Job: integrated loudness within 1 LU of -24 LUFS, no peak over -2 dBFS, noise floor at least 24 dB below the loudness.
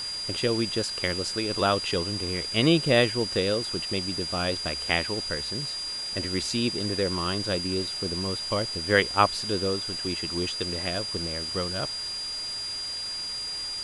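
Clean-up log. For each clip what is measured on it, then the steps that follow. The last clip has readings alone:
steady tone 4.8 kHz; tone level -31 dBFS; noise floor -34 dBFS; noise floor target -51 dBFS; loudness -26.5 LUFS; peak level -5.0 dBFS; loudness target -24.0 LUFS
-> band-stop 4.8 kHz, Q 30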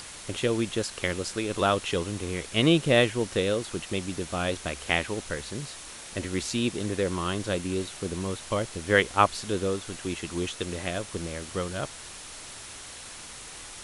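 steady tone not found; noise floor -43 dBFS; noise floor target -53 dBFS
-> noise reduction 10 dB, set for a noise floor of -43 dBFS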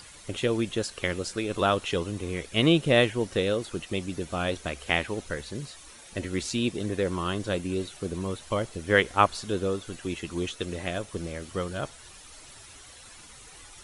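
noise floor -49 dBFS; noise floor target -53 dBFS
-> noise reduction 6 dB, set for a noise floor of -49 dBFS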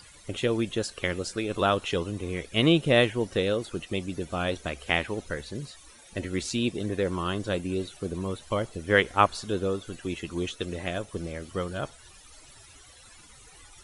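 noise floor -52 dBFS; noise floor target -53 dBFS
-> noise reduction 6 dB, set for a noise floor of -52 dBFS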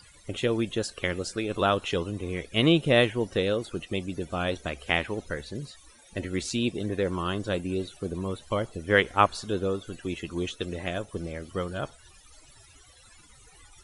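noise floor -55 dBFS; loudness -28.5 LUFS; peak level -5.5 dBFS; loudness target -24.0 LUFS
-> trim +4.5 dB; peak limiter -2 dBFS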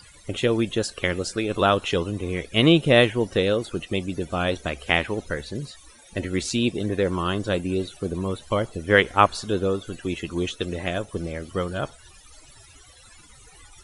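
loudness -24.0 LUFS; peak level -2.0 dBFS; noise floor -50 dBFS

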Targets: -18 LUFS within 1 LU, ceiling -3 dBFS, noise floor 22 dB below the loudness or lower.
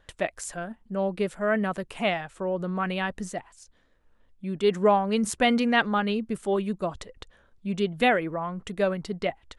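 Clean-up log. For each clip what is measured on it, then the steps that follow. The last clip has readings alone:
loudness -27.0 LUFS; peak level -8.5 dBFS; loudness target -18.0 LUFS
-> trim +9 dB; peak limiter -3 dBFS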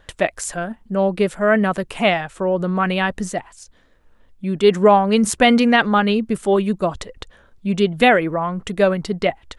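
loudness -18.0 LUFS; peak level -3.0 dBFS; noise floor -54 dBFS

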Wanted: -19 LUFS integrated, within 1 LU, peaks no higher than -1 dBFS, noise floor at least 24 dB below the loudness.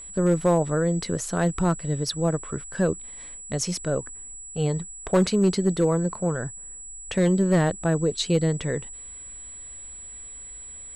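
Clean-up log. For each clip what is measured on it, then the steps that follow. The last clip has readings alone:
clipped samples 0.4%; clipping level -13.0 dBFS; steady tone 7.8 kHz; tone level -38 dBFS; loudness -24.5 LUFS; peak level -13.0 dBFS; loudness target -19.0 LUFS
-> clip repair -13 dBFS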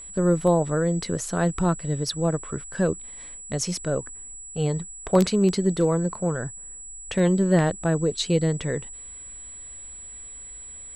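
clipped samples 0.0%; steady tone 7.8 kHz; tone level -38 dBFS
-> band-stop 7.8 kHz, Q 30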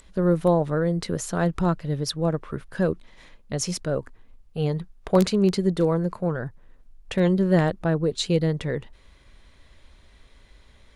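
steady tone not found; loudness -24.5 LUFS; peak level -4.5 dBFS; loudness target -19.0 LUFS
-> trim +5.5 dB; peak limiter -1 dBFS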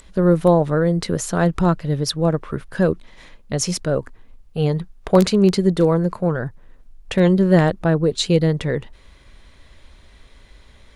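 loudness -19.0 LUFS; peak level -1.0 dBFS; noise floor -49 dBFS

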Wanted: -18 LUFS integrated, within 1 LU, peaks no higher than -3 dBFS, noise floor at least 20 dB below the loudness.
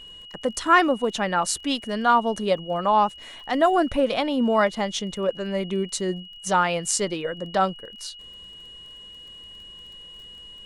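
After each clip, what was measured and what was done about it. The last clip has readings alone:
tick rate 22 per s; steady tone 2.9 kHz; tone level -41 dBFS; loudness -23.5 LUFS; peak level -4.5 dBFS; loudness target -18.0 LUFS
-> de-click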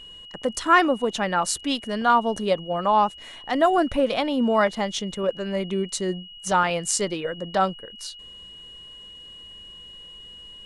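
tick rate 0 per s; steady tone 2.9 kHz; tone level -41 dBFS
-> band-stop 2.9 kHz, Q 30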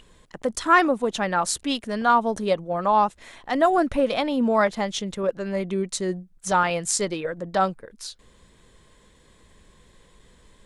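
steady tone not found; loudness -23.5 LUFS; peak level -4.5 dBFS; loudness target -18.0 LUFS
-> trim +5.5 dB; peak limiter -3 dBFS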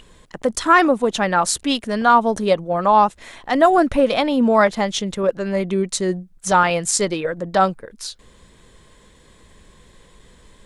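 loudness -18.0 LUFS; peak level -3.0 dBFS; noise floor -51 dBFS

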